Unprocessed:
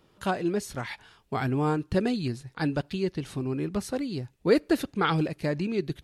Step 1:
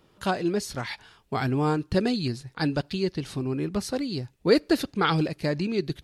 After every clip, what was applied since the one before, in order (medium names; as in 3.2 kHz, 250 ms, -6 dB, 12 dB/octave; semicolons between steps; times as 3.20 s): dynamic bell 4.7 kHz, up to +7 dB, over -55 dBFS, Q 2; trim +1.5 dB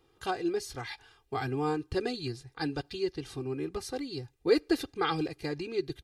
comb 2.5 ms, depth 79%; trim -8 dB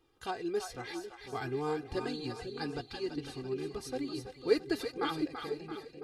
fade out at the end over 1.17 s; two-band feedback delay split 520 Hz, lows 500 ms, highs 335 ms, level -7 dB; flange 0.97 Hz, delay 3.1 ms, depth 2 ms, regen +56%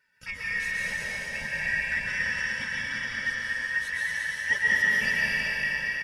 four frequency bands reordered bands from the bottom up 2143; delay 235 ms -5 dB; plate-style reverb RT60 3 s, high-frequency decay 0.95×, pre-delay 110 ms, DRR -5.5 dB